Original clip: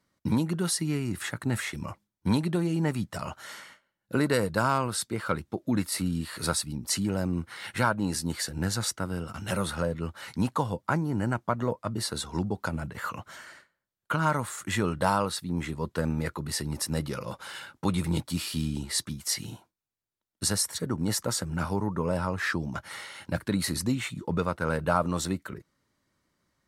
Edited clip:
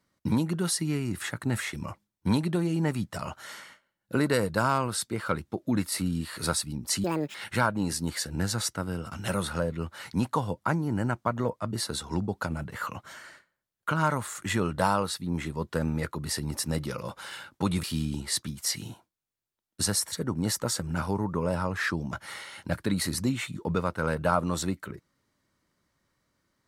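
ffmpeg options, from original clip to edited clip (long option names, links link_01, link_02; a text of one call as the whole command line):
ffmpeg -i in.wav -filter_complex "[0:a]asplit=4[link_01][link_02][link_03][link_04];[link_01]atrim=end=7.044[link_05];[link_02]atrim=start=7.04:end=7.57,asetpts=PTS-STARTPTS,asetrate=76734,aresample=44100[link_06];[link_03]atrim=start=7.566:end=18.062[link_07];[link_04]atrim=start=18.458[link_08];[link_05][link_06]acrossfade=duration=0.004:curve1=hsin:curve2=hsin[link_09];[link_09][link_07]acrossfade=duration=0.004:curve1=hsin:curve2=hsin[link_10];[link_10][link_08]acrossfade=duration=0.004:curve1=hsin:curve2=hsin" out.wav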